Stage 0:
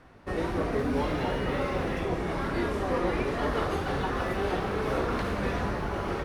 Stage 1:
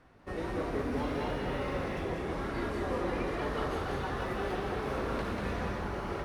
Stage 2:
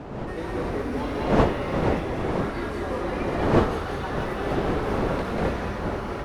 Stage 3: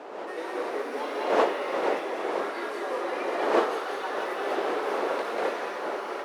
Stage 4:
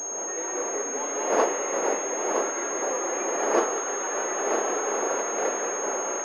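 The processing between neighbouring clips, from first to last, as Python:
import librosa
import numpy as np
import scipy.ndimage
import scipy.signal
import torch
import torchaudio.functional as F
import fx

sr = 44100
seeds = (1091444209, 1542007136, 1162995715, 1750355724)

y1 = x + 10.0 ** (-3.5 / 20.0) * np.pad(x, (int(191 * sr / 1000.0), 0))[:len(x)]
y1 = F.gain(torch.from_numpy(y1), -6.5).numpy()
y2 = fx.dmg_wind(y1, sr, seeds[0], corner_hz=530.0, level_db=-32.0)
y2 = F.gain(torch.from_numpy(y2), 4.5).numpy()
y3 = scipy.signal.sosfilt(scipy.signal.butter(4, 380.0, 'highpass', fs=sr, output='sos'), y2)
y4 = y3 + 10.0 ** (-6.5 / 20.0) * np.pad(y3, (int(965 * sr / 1000.0), 0))[:len(y3)]
y4 = fx.pwm(y4, sr, carrier_hz=6500.0)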